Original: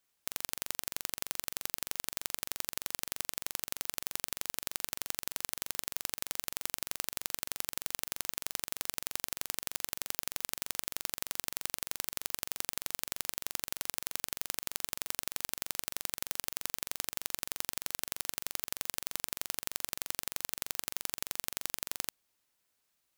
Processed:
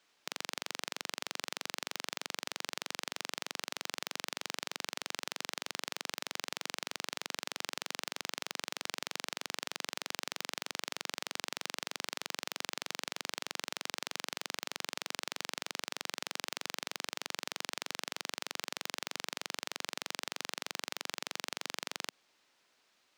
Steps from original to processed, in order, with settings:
three-way crossover with the lows and the highs turned down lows −16 dB, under 190 Hz, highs −20 dB, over 6,100 Hz
brickwall limiter −26.5 dBFS, peak gain reduction 10.5 dB
level +12 dB

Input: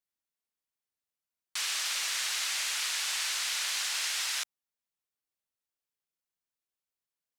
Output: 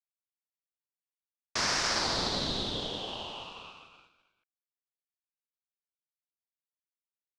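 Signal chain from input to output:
low-pass filter sweep 3,500 Hz → 300 Hz, 0:01.87–0:04.76
downward expander −43 dBFS
ring modulation 1,900 Hz
level +3.5 dB

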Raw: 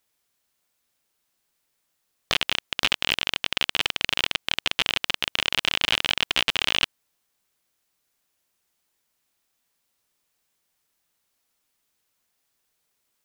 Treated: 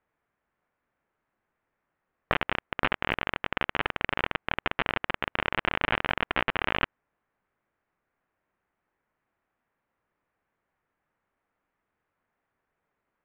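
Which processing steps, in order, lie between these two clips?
low-pass filter 1,900 Hz 24 dB per octave
level +3.5 dB

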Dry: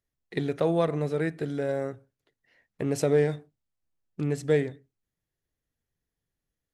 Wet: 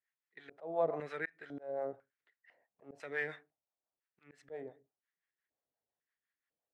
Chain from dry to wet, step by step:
two-band tremolo in antiphase 5.8 Hz, depth 70%, crossover 540 Hz
auto-filter band-pass square 1 Hz 710–1,800 Hz
volume swells 412 ms
level +7.5 dB

